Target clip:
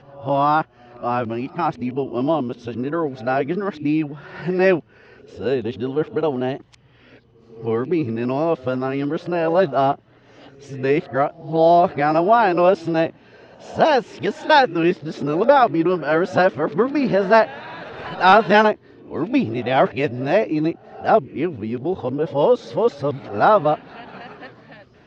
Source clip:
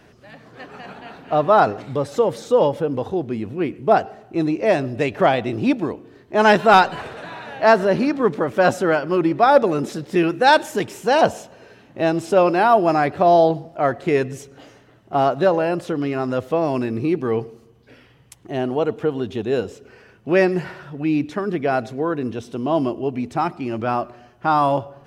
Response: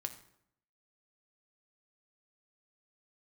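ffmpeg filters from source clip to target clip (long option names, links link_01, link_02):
-af "areverse,lowpass=frequency=5200:width=0.5412,lowpass=frequency=5200:width=1.3066"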